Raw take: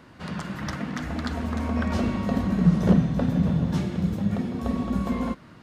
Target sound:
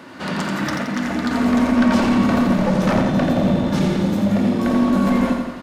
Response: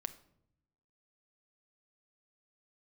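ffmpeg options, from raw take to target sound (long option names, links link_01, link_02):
-filter_complex "[0:a]highpass=190,asettb=1/sr,asplit=3[link_01][link_02][link_03];[link_01]atrim=end=0.674[link_04];[link_02]atrim=start=0.67:end=1.31,asetpts=PTS-STARTPTS,afade=type=in:duration=0.004:curve=qsin,afade=type=out:start_time=0.636:duration=0.004:curve=qsin,acompressor=threshold=-32dB:ratio=6[link_05];[link_03]atrim=start=1.306[link_06];[link_04][link_05]acrossfade=duration=0.004:curve1=hsin:curve2=qsin[link_07];[link_07][link_06]acrossfade=duration=0.004:curve1=qsin:curve2=hsin,aeval=exprs='0.355*sin(PI/2*5.01*val(0)/0.355)':channel_layout=same,aecho=1:1:86|172|258|344|430|516|602:0.562|0.315|0.176|0.0988|0.0553|0.031|0.0173[link_08];[1:a]atrim=start_sample=2205,asetrate=74970,aresample=44100[link_09];[link_08][link_09]afir=irnorm=-1:irlink=0"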